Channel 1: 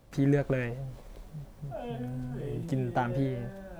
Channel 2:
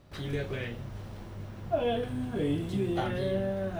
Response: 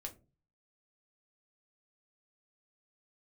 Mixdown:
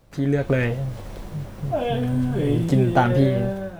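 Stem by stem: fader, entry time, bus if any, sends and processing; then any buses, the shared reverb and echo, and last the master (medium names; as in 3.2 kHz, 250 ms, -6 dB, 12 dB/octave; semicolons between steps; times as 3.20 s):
+1.5 dB, 0.00 s, no send, none
-6.0 dB, 0.00 s, no send, none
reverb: none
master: level rider gain up to 10 dB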